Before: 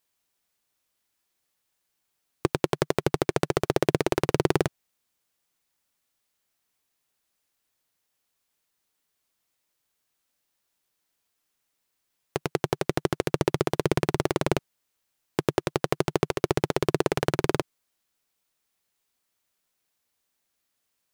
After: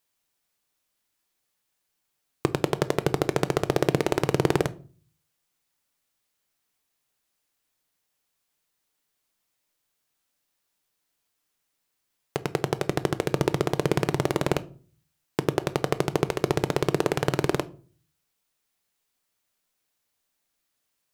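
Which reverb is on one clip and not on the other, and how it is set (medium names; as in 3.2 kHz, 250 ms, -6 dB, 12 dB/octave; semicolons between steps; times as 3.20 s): simulated room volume 300 m³, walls furnished, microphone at 0.41 m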